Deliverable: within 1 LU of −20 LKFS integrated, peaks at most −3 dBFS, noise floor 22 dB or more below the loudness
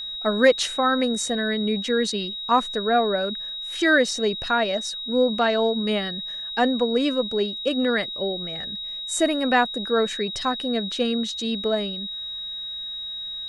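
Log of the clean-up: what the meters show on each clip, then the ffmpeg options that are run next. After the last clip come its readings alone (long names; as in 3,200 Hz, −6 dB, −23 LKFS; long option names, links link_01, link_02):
interfering tone 3,800 Hz; level of the tone −30 dBFS; integrated loudness −23.5 LKFS; sample peak −5.0 dBFS; target loudness −20.0 LKFS
→ -af "bandreject=frequency=3800:width=30"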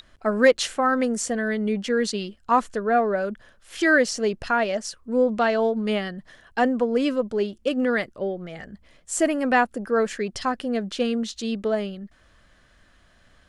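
interfering tone none found; integrated loudness −24.0 LKFS; sample peak −5.0 dBFS; target loudness −20.0 LKFS
→ -af "volume=4dB,alimiter=limit=-3dB:level=0:latency=1"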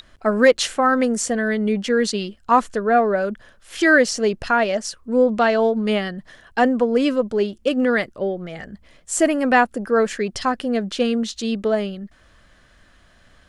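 integrated loudness −20.0 LKFS; sample peak −3.0 dBFS; background noise floor −54 dBFS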